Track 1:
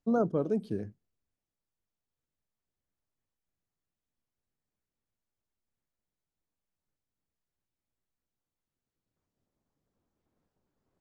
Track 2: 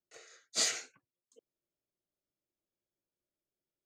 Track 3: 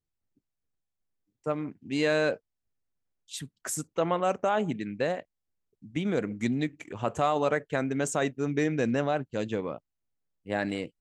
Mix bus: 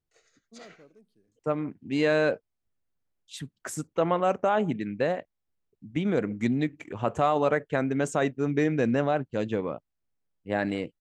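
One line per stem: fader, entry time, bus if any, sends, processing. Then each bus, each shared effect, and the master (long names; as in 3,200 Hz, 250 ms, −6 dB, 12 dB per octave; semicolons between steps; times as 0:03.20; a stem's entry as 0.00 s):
−18.0 dB, 0.45 s, no send, parametric band 990 Hz −4 dB 1.4 octaves; gain into a clipping stage and back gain 21.5 dB; spectral tilt +2.5 dB per octave; automatic ducking −15 dB, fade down 0.75 s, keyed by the third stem
−7.5 dB, 0.00 s, no send, treble cut that deepens with the level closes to 1,900 Hz, closed at −32.5 dBFS; amplitude tremolo 11 Hz, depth 56%
+2.5 dB, 0.00 s, no send, high-shelf EQ 4,300 Hz −10 dB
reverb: not used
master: no processing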